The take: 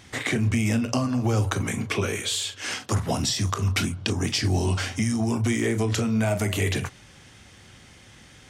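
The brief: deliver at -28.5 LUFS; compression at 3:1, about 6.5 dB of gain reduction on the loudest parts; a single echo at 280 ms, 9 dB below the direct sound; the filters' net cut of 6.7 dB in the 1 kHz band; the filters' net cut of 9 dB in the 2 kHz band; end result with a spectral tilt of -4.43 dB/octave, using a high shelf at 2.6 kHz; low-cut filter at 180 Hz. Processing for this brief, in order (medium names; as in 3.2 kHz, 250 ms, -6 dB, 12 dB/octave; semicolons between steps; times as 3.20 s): high-pass 180 Hz; peaking EQ 1 kHz -6.5 dB; peaking EQ 2 kHz -7 dB; treble shelf 2.6 kHz -5 dB; compression 3:1, threshold -32 dBFS; delay 280 ms -9 dB; trim +5.5 dB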